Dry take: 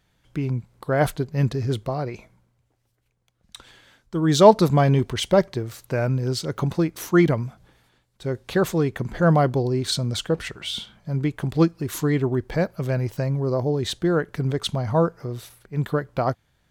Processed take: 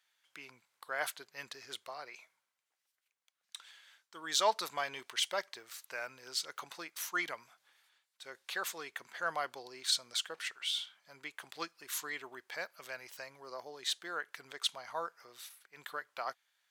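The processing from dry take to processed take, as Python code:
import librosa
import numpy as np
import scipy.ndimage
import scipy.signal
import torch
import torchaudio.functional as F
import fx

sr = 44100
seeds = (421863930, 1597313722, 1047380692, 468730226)

y = scipy.signal.sosfilt(scipy.signal.butter(2, 1400.0, 'highpass', fs=sr, output='sos'), x)
y = y * 10.0 ** (-5.0 / 20.0)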